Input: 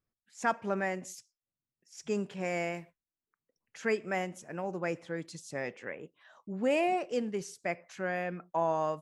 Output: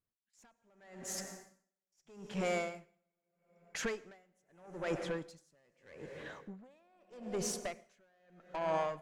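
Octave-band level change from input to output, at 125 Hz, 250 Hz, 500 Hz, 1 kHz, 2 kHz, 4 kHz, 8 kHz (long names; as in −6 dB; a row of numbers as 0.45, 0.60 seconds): −6.0, −8.0, −7.0, −8.5, −8.5, −1.0, +3.0 decibels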